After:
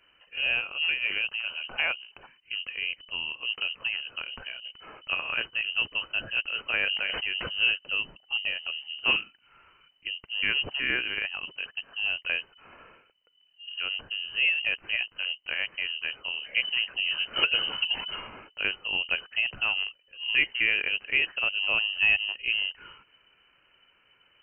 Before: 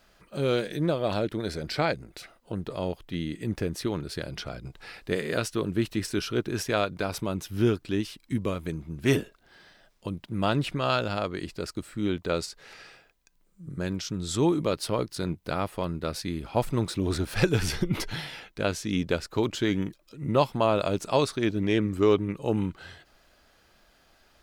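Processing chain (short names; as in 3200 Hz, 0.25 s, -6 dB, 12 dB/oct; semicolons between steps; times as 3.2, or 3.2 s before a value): inverted band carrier 3000 Hz; 6.79–7.55 sustainer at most 24 dB/s; gain -2 dB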